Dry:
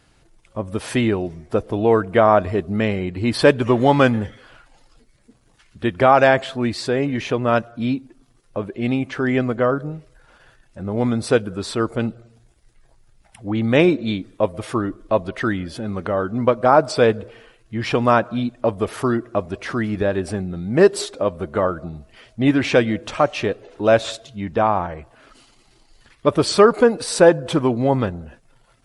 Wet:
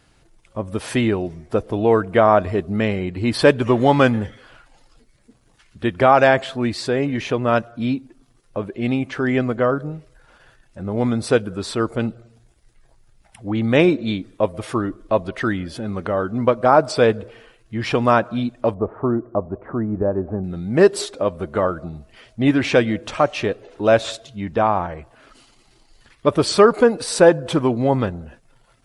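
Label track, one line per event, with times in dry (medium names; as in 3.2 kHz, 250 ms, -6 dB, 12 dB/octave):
18.740000	20.440000	low-pass 1.1 kHz 24 dB/octave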